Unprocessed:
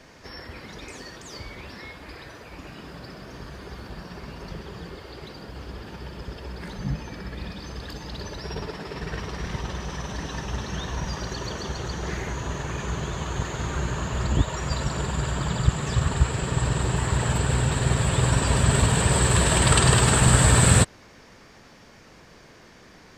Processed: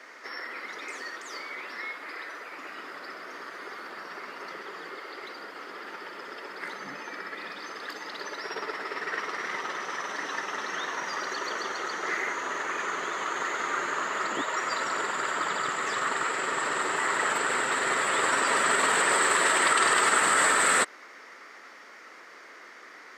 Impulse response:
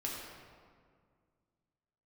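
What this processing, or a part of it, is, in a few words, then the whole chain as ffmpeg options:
laptop speaker: -af "highpass=f=310:w=0.5412,highpass=f=310:w=1.3066,equalizer=f=1.3k:t=o:w=0.55:g=11,equalizer=f=2k:t=o:w=0.31:g=11,alimiter=limit=-10.5dB:level=0:latency=1:release=60,volume=-2dB"

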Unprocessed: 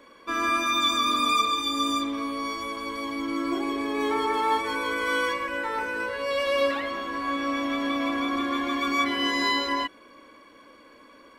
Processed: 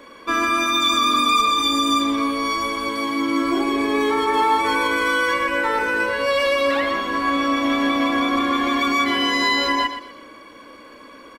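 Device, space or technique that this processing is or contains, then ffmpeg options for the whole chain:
clipper into limiter: -filter_complex "[0:a]asoftclip=type=hard:threshold=-15dB,alimiter=limit=-19.5dB:level=0:latency=1:release=73,asettb=1/sr,asplit=3[a][b][c];[a]atrim=end=2.884[d];[b]atrim=start=2.88:end=3.42,asetpts=PTS-STARTPTS,afade=t=in:d=0.004:c=qsin,afade=t=out:st=0.536:d=0.004:c=qsin,highpass=100[e];[c]atrim=start=3.416[f];[d][e]acrossfade=d=0.004:c1=hsin:c2=qsin[g];[g][f]acrossfade=d=0.004:c1=qsin:c2=hsin,aecho=1:1:121|242|363:0.299|0.0866|0.0251,volume=8.5dB"

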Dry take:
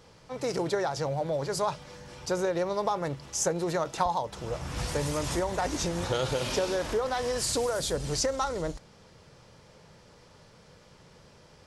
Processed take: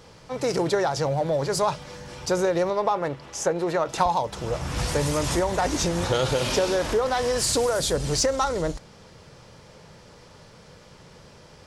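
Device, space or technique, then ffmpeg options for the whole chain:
parallel distortion: -filter_complex "[0:a]asettb=1/sr,asplit=3[a][b][c];[a]atrim=end=2.704[d];[b]atrim=start=2.7:end=3.89,asetpts=PTS-STARTPTS,afade=t=in:d=0.004:c=qsin,afade=t=out:st=1.186:d=0.004:c=qsin,bass=f=250:g=-7,treble=f=4k:g=-10[e];[c]atrim=start=3.886[f];[d][e]acrossfade=d=0.004:c1=hsin:c2=qsin[g];[g][f]acrossfade=d=0.004:c1=qsin:c2=hsin,asplit=2[h][i];[i]asoftclip=type=hard:threshold=-29.5dB,volume=-13dB[j];[h][j]amix=inputs=2:normalize=0,volume=4.5dB"

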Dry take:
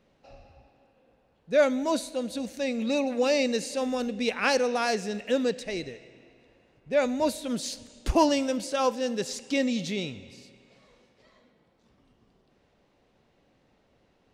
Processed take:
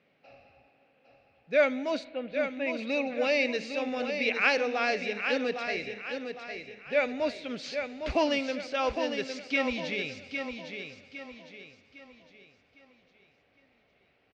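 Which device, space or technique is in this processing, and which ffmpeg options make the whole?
kitchen radio: -filter_complex "[0:a]asplit=3[a][b][c];[a]afade=t=out:st=2.03:d=0.02[d];[b]lowpass=f=2.9k:w=0.5412,lowpass=f=2.9k:w=1.3066,afade=t=in:st=2.03:d=0.02,afade=t=out:st=2.72:d=0.02[e];[c]afade=t=in:st=2.72:d=0.02[f];[d][e][f]amix=inputs=3:normalize=0,highpass=170,equalizer=f=220:t=q:w=4:g=-5,equalizer=f=340:t=q:w=4:g=-6,equalizer=f=520:t=q:w=4:g=-3,equalizer=f=960:t=q:w=4:g=-8,equalizer=f=2.3k:t=q:w=4:g=8,equalizer=f=3.8k:t=q:w=4:g=-4,lowpass=f=4.5k:w=0.5412,lowpass=f=4.5k:w=1.3066,asubboost=boost=8:cutoff=54,aecho=1:1:807|1614|2421|3228|4035:0.447|0.174|0.0679|0.0265|0.0103"

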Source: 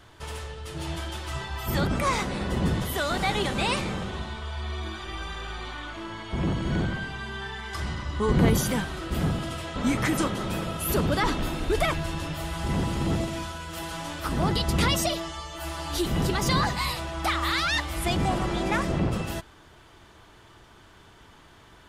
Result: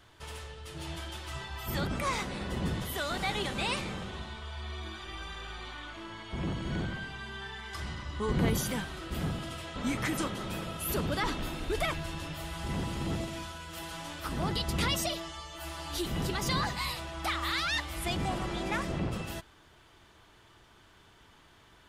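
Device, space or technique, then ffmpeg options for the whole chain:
presence and air boost: -af "equalizer=f=3k:t=o:w=1.9:g=3,highshelf=f=11k:g=4.5,volume=-7.5dB"

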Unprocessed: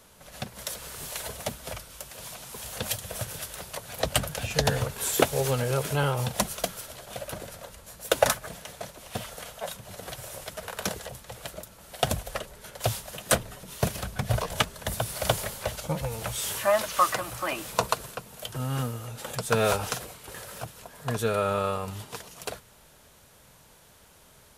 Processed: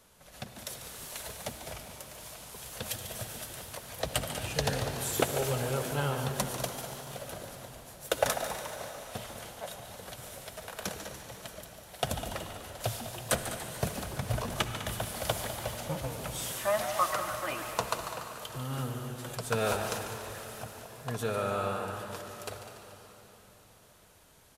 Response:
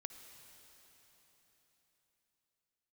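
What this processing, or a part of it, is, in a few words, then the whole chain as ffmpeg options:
cave: -filter_complex "[0:a]aecho=1:1:202:0.211[a];[1:a]atrim=start_sample=2205[b];[a][b]afir=irnorm=-1:irlink=0,asplit=7[c][d][e][f][g][h][i];[d]adelay=144,afreqshift=120,volume=-11.5dB[j];[e]adelay=288,afreqshift=240,volume=-16.4dB[k];[f]adelay=432,afreqshift=360,volume=-21.3dB[l];[g]adelay=576,afreqshift=480,volume=-26.1dB[m];[h]adelay=720,afreqshift=600,volume=-31dB[n];[i]adelay=864,afreqshift=720,volume=-35.9dB[o];[c][j][k][l][m][n][o]amix=inputs=7:normalize=0,volume=-1.5dB"

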